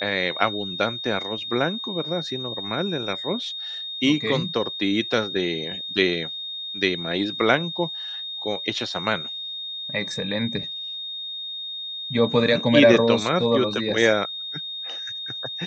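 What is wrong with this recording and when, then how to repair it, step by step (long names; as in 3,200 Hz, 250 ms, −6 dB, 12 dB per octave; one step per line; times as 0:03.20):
whistle 3,700 Hz −30 dBFS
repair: notch filter 3,700 Hz, Q 30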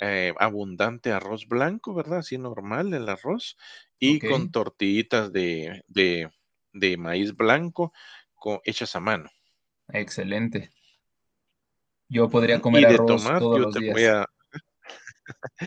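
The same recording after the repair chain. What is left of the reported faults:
none of them is left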